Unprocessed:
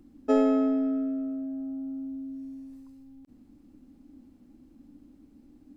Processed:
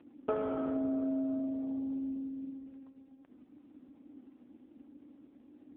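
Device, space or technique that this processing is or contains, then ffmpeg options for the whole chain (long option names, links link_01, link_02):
voicemail: -af "highpass=390,lowpass=3000,acompressor=threshold=-36dB:ratio=8,volume=7dB" -ar 8000 -c:a libopencore_amrnb -b:a 5900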